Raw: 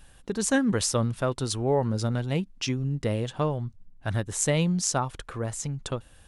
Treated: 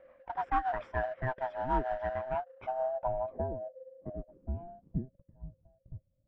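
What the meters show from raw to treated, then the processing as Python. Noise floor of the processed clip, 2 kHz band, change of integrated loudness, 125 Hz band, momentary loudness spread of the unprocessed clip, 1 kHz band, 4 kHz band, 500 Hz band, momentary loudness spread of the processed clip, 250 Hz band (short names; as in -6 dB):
-75 dBFS, -7.5 dB, -8.0 dB, -15.0 dB, 10 LU, +1.0 dB, under -25 dB, -6.0 dB, 19 LU, -16.0 dB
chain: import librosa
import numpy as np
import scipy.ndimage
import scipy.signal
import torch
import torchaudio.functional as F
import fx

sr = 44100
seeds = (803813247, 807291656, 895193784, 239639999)

p1 = fx.band_swap(x, sr, width_hz=500)
p2 = fx.rotary_switch(p1, sr, hz=6.7, then_hz=1.2, switch_at_s=2.6)
p3 = scipy.signal.savgol_filter(p2, 25, 4, mode='constant')
p4 = fx.sample_hold(p3, sr, seeds[0], rate_hz=2300.0, jitter_pct=20)
p5 = p3 + F.gain(torch.from_numpy(p4), -10.0).numpy()
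p6 = fx.filter_sweep_lowpass(p5, sr, from_hz=1700.0, to_hz=120.0, start_s=2.06, end_s=5.55, q=1.8)
y = F.gain(torch.from_numpy(p6), -7.0).numpy()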